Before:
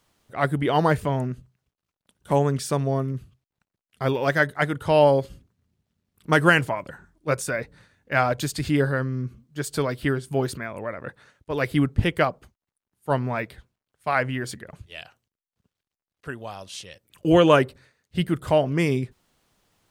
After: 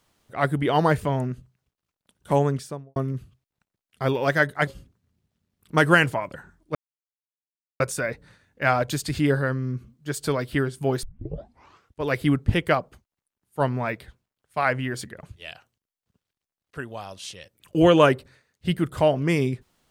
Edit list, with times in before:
2.4–2.96 studio fade out
4.67–5.22 cut
7.3 insert silence 1.05 s
10.53 tape start 0.99 s

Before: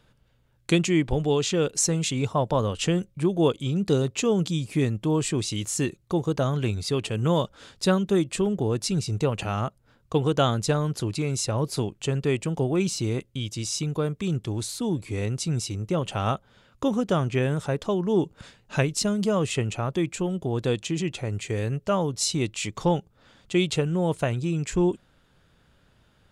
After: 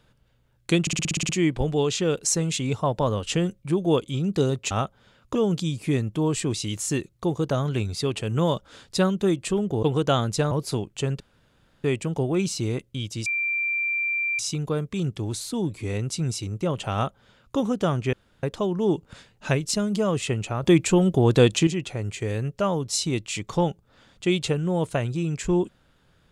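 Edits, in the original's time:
0.81 stutter 0.06 s, 9 plays
8.71–10.13 cut
10.81–11.56 cut
12.25 insert room tone 0.64 s
13.67 add tone 2360 Hz -22.5 dBFS 1.13 s
16.21–16.85 copy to 4.23
17.41–17.71 room tone
19.91–20.95 gain +8.5 dB

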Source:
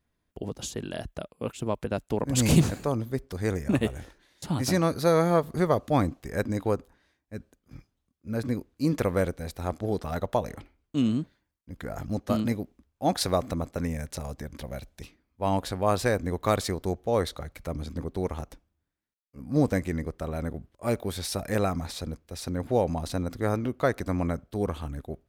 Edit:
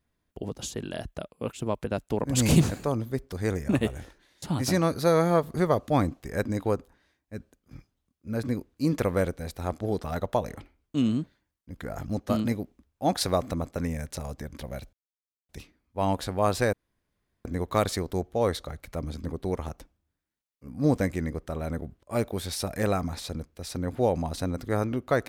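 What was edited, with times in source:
14.93 insert silence 0.56 s
16.17 insert room tone 0.72 s

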